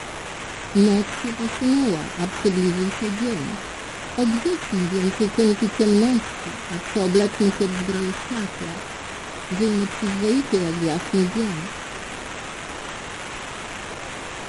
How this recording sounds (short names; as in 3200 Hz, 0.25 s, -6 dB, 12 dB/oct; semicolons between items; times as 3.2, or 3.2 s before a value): a quantiser's noise floor 6-bit, dither triangular; phasing stages 8, 0.58 Hz, lowest notch 530–4100 Hz; aliases and images of a low sample rate 4800 Hz, jitter 20%; MP3